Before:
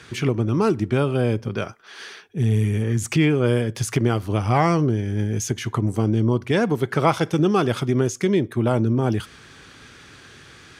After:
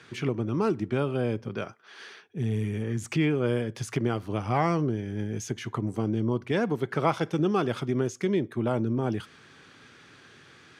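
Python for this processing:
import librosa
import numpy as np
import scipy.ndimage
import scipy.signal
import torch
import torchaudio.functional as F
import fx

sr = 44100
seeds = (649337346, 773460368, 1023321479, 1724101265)

y = scipy.signal.sosfilt(scipy.signal.butter(2, 120.0, 'highpass', fs=sr, output='sos'), x)
y = fx.high_shelf(y, sr, hz=6400.0, db=-9.0)
y = F.gain(torch.from_numpy(y), -6.0).numpy()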